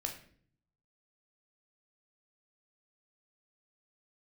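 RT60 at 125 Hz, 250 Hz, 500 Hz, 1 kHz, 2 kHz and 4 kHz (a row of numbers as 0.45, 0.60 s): 1.0, 0.85, 0.60, 0.45, 0.50, 0.45 s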